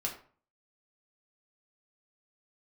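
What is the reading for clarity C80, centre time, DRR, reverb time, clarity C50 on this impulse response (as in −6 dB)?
13.0 dB, 20 ms, −2.0 dB, 0.45 s, 9.0 dB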